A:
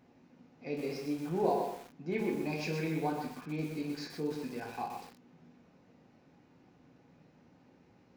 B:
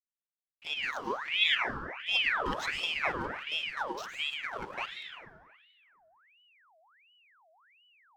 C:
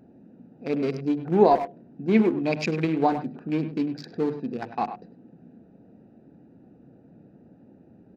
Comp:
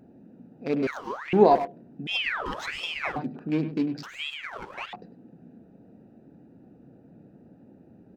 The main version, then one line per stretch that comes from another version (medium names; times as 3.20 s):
C
0.87–1.33 s: from B
2.07–3.16 s: from B
4.03–4.93 s: from B
not used: A